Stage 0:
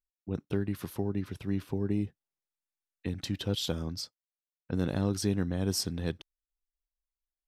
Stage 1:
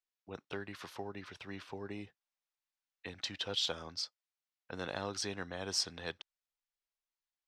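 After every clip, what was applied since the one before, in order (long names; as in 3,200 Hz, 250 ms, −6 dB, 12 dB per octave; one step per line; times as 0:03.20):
three-way crossover with the lows and the highs turned down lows −20 dB, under 570 Hz, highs −24 dB, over 7,000 Hz
level +2 dB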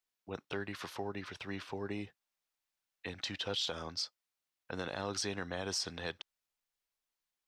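brickwall limiter −30 dBFS, peak gain reduction 9.5 dB
level +4 dB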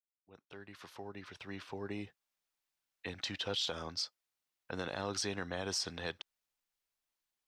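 fade in at the beginning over 2.32 s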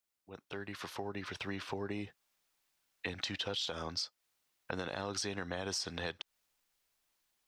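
downward compressor 4 to 1, threshold −45 dBFS, peak gain reduction 11 dB
level +9 dB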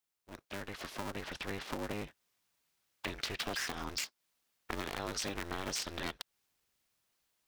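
sub-harmonics by changed cycles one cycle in 2, inverted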